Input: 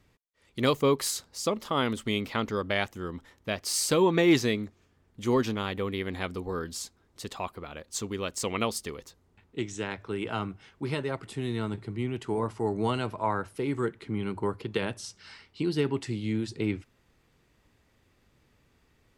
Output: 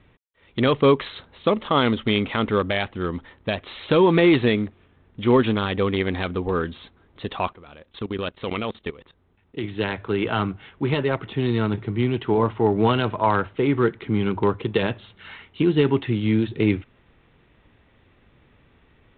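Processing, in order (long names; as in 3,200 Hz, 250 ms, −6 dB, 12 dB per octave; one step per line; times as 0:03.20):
0:07.53–0:09.64: output level in coarse steps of 18 dB
boost into a limiter +16.5 dB
level −7 dB
G.726 32 kbit/s 8,000 Hz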